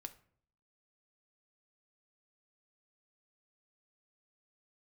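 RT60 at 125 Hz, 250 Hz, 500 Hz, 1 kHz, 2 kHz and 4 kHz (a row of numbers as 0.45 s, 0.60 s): 0.75 s, 0.70 s, 0.60 s, 0.50 s, 0.45 s, 0.35 s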